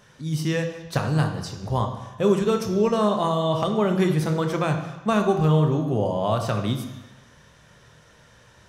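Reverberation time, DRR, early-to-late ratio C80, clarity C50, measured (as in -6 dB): 1.1 s, 4.5 dB, 9.5 dB, 7.0 dB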